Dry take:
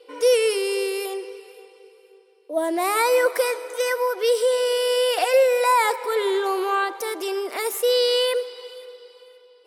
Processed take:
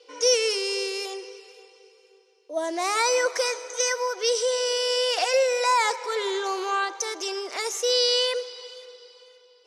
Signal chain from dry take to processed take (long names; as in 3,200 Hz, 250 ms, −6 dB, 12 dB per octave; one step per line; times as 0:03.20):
low-pass with resonance 6,200 Hz, resonance Q 8.2
low-shelf EQ 290 Hz −10.5 dB
level −2.5 dB